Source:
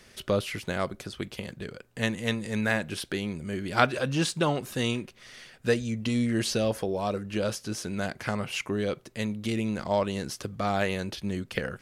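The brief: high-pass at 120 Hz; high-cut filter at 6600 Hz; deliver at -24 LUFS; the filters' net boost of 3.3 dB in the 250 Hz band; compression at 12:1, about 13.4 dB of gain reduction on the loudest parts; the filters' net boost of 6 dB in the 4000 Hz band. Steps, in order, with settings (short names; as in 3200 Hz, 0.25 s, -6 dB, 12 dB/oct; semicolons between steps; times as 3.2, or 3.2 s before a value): HPF 120 Hz; LPF 6600 Hz; bell 250 Hz +4.5 dB; bell 4000 Hz +8 dB; compressor 12:1, threshold -28 dBFS; gain +10 dB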